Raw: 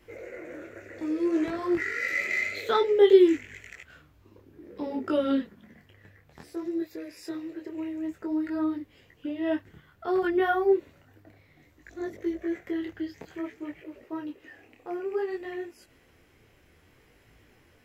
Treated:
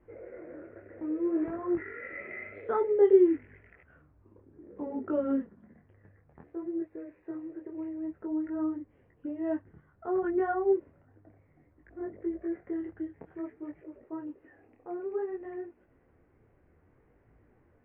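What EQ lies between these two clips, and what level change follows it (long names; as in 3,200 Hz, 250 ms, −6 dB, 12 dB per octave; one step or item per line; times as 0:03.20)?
Gaussian smoothing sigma 5.5 samples
−3.0 dB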